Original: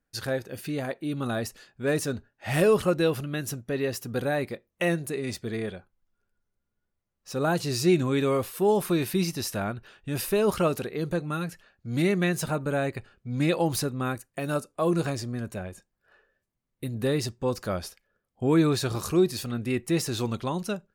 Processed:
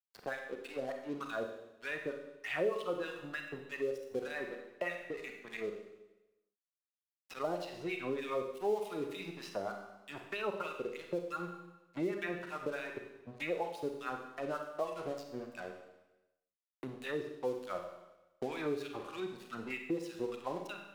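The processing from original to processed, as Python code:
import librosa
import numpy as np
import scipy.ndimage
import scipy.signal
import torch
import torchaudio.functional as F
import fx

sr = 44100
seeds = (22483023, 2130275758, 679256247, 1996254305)

y = fx.wah_lfo(x, sr, hz=3.3, low_hz=410.0, high_hz=3000.0, q=2.1)
y = fx.noise_reduce_blind(y, sr, reduce_db=8)
y = np.sign(y) * np.maximum(np.abs(y) - 10.0 ** (-51.5 / 20.0), 0.0)
y = fx.rev_schroeder(y, sr, rt60_s=0.73, comb_ms=31, drr_db=4.0)
y = fx.band_squash(y, sr, depth_pct=70)
y = y * librosa.db_to_amplitude(-3.0)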